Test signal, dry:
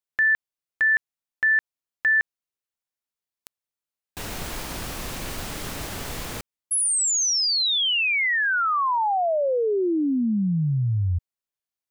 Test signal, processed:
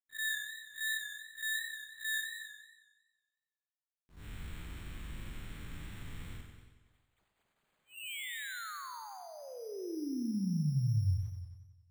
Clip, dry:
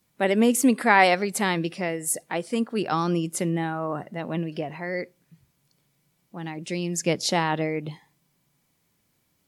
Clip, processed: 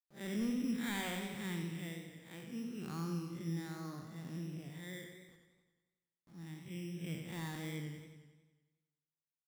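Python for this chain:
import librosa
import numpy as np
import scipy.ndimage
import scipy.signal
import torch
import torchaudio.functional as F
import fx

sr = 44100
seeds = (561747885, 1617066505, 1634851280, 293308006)

y = fx.spec_blur(x, sr, span_ms=126.0)
y = fx.gate_hold(y, sr, open_db=-51.0, close_db=-53.0, hold_ms=207.0, range_db=-21, attack_ms=17.0, release_ms=21.0)
y = fx.env_lowpass(y, sr, base_hz=870.0, full_db=-25.0)
y = fx.high_shelf(y, sr, hz=5000.0, db=7.5)
y = np.clip(y, -10.0 ** (-17.5 / 20.0), 10.0 ** (-17.5 / 20.0))
y = fx.tone_stack(y, sr, knobs='6-0-2')
y = fx.quant_dither(y, sr, seeds[0], bits=12, dither='none')
y = y + 10.0 ** (-15.5 / 20.0) * np.pad(y, (int(261 * sr / 1000.0), 0))[:len(y)]
y = np.repeat(scipy.signal.resample_poly(y, 1, 8), 8)[:len(y)]
y = fx.echo_warbled(y, sr, ms=92, feedback_pct=60, rate_hz=2.8, cents=67, wet_db=-7)
y = y * librosa.db_to_amplitude(5.5)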